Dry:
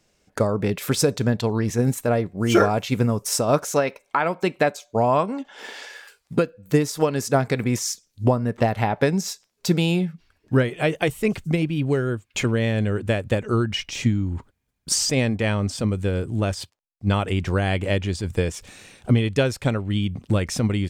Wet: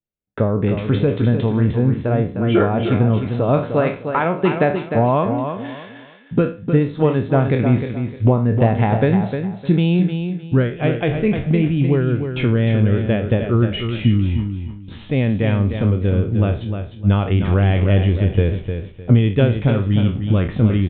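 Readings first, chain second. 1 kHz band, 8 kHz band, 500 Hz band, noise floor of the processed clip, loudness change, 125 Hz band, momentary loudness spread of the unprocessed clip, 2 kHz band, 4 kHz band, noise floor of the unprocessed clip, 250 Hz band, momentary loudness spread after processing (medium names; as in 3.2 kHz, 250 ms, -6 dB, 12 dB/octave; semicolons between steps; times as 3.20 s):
+1.5 dB, under -40 dB, +3.0 dB, -38 dBFS, +5.0 dB, +7.5 dB, 8 LU, 0.0 dB, -3.5 dB, -71 dBFS, +5.5 dB, 7 LU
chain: spectral sustain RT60 0.34 s; expander -34 dBFS; bass shelf 400 Hz +10.5 dB; in parallel at -2.5 dB: peak limiter -5.5 dBFS, peak gain reduction 8 dB; on the sum: gain riding 2 s; on a send: feedback delay 305 ms, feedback 26%, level -7.5 dB; on the sum: resampled via 8 kHz; trim -7 dB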